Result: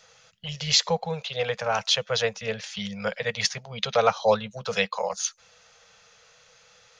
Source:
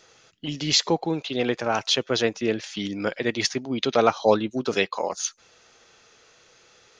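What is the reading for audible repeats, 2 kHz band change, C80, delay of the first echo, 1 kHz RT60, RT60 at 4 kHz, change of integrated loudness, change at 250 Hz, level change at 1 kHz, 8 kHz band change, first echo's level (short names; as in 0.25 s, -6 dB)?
none, 0.0 dB, none, none, none, none, -1.5 dB, -11.0 dB, -0.5 dB, 0.0 dB, none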